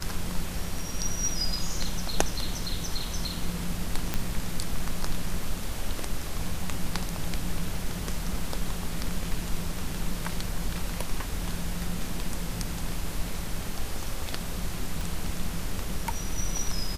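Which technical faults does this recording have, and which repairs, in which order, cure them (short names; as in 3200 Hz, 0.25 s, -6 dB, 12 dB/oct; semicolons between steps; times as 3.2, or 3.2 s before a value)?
4.14 pop -11 dBFS
15.01 pop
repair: de-click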